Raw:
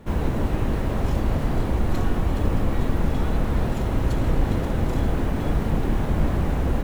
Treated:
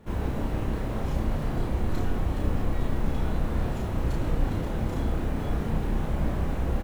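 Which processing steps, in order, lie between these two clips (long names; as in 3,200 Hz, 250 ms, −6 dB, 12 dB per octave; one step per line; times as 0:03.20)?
double-tracking delay 32 ms −3 dB
level −7 dB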